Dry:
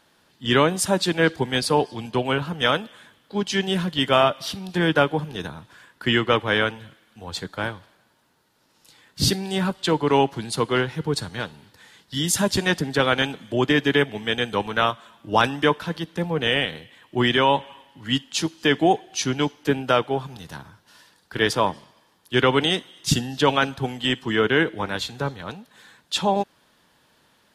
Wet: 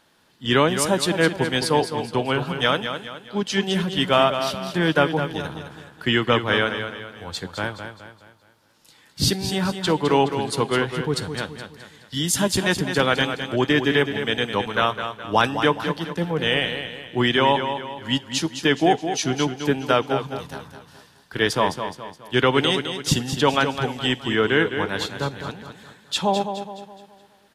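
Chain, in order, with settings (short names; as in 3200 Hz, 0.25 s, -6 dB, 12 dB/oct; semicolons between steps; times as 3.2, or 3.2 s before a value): feedback echo 0.21 s, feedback 42%, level -8.5 dB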